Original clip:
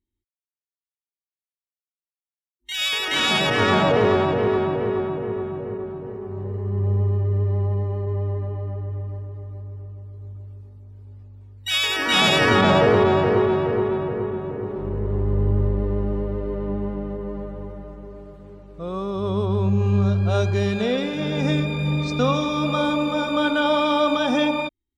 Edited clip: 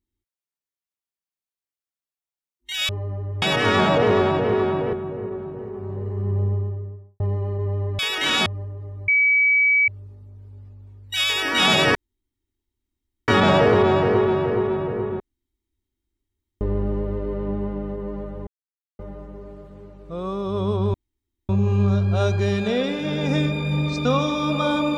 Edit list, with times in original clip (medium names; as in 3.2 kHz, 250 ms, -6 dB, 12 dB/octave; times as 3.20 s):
2.89–3.36 s: swap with 8.47–9.00 s
4.87–5.41 s: delete
6.70–7.68 s: studio fade out
9.62–10.42 s: bleep 2.28 kHz -14 dBFS
12.49 s: insert room tone 1.33 s
14.41–15.82 s: room tone
17.68 s: insert silence 0.52 s
19.63 s: insert room tone 0.55 s